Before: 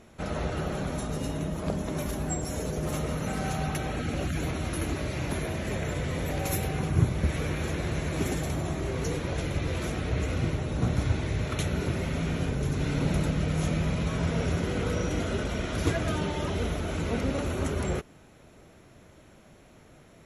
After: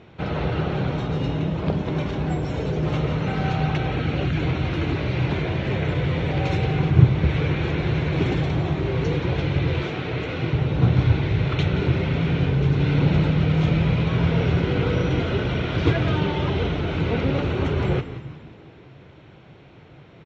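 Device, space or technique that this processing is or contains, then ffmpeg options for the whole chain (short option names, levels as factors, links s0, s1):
frequency-shifting delay pedal into a guitar cabinet: -filter_complex "[0:a]asplit=7[s0][s1][s2][s3][s4][s5][s6];[s1]adelay=175,afreqshift=-99,volume=0.251[s7];[s2]adelay=350,afreqshift=-198,volume=0.133[s8];[s3]adelay=525,afreqshift=-297,volume=0.0708[s9];[s4]adelay=700,afreqshift=-396,volume=0.0376[s10];[s5]adelay=875,afreqshift=-495,volume=0.0197[s11];[s6]adelay=1050,afreqshift=-594,volume=0.0105[s12];[s0][s7][s8][s9][s10][s11][s12]amix=inputs=7:normalize=0,highpass=77,equalizer=f=130:t=q:w=4:g=6,equalizer=f=230:t=q:w=4:g=-7,equalizer=f=620:t=q:w=4:g=-6,equalizer=f=1200:t=q:w=4:g=-4,equalizer=f=1800:t=q:w=4:g=-4,lowpass=f=3800:w=0.5412,lowpass=f=3800:w=1.3066,asettb=1/sr,asplit=3[s13][s14][s15];[s13]atrim=end=9.834[s16];[s14]atrim=start=9.83:end=10.53,asetpts=PTS-STARTPTS,afade=t=in:d=0.004:c=qsin,afade=t=out:st=0.696:d=0.004:c=qsin,highpass=f=270:p=1[s17];[s15]atrim=start=10.526[s18];[s16][s17]acrossfade=d=0.004:c1=hsin:c2=qsin[s19];[s19][s18]acrossfade=d=0.004:c1=qsin:c2=hsin,volume=2.51"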